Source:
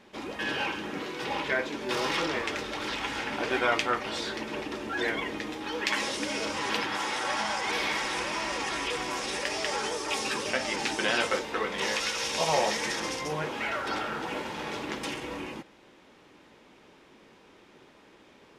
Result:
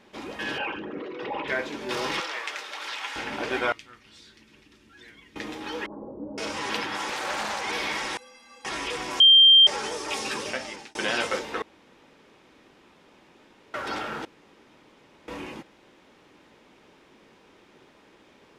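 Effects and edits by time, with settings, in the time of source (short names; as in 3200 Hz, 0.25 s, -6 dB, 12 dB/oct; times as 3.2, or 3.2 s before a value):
0.58–1.48 formant sharpening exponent 2
2.2–3.16 HPF 820 Hz
3.72–5.36 passive tone stack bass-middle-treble 6-0-2
5.86–6.38 Gaussian blur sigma 13 samples
7.08–7.64 Doppler distortion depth 0.46 ms
8.17–8.65 metallic resonator 240 Hz, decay 0.6 s, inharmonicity 0.03
9.2–9.67 bleep 3170 Hz -10.5 dBFS
10.42–10.95 fade out
11.62–13.74 room tone
14.25–15.28 room tone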